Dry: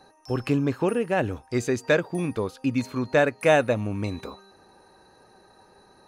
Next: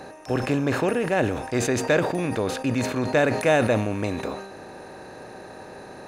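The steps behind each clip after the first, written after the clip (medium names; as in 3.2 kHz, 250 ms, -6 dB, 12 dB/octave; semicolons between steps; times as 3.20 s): spectral levelling over time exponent 0.6; decay stretcher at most 61 dB/s; trim -2.5 dB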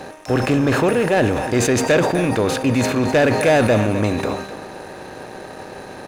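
delay 254 ms -13 dB; waveshaping leveller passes 2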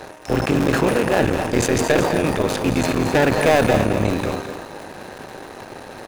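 cycle switcher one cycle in 3, muted; on a send: delay 217 ms -9 dB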